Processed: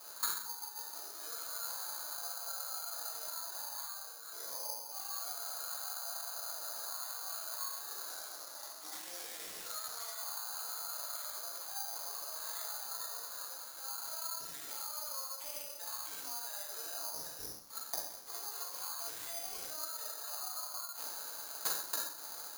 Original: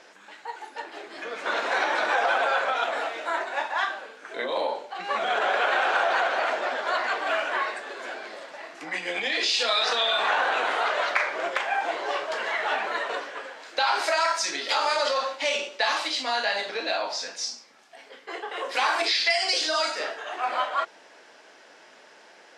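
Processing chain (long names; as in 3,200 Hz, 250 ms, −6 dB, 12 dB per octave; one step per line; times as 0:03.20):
high-pass filter 790 Hz 6 dB per octave
noise gate with hold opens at −42 dBFS
high shelf with overshoot 1,700 Hz −6.5 dB, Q 3
downward compressor 6 to 1, threshold −35 dBFS, peak gain reduction 15.5 dB
brickwall limiter −30.5 dBFS, peak gain reduction 9 dB
automatic gain control gain up to 3 dB
gate with flip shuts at −42 dBFS, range −33 dB
convolution reverb RT60 0.80 s, pre-delay 5 ms, DRR −5.5 dB
bad sample-rate conversion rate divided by 8×, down none, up zero stuff
0:08.10–0:10.17: highs frequency-modulated by the lows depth 0.15 ms
level +10 dB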